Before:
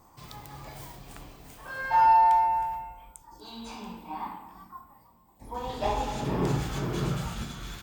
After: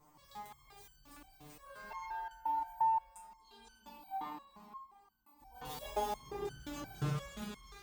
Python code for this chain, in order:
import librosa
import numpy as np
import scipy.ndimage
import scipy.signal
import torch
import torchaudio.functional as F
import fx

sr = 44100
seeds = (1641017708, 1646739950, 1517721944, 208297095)

y = fx.crossing_spikes(x, sr, level_db=-31.0, at=(5.65, 6.13))
y = fx.echo_diffused(y, sr, ms=492, feedback_pct=50, wet_db=-13)
y = fx.resonator_held(y, sr, hz=5.7, low_hz=150.0, high_hz=1500.0)
y = F.gain(torch.from_numpy(y), 4.5).numpy()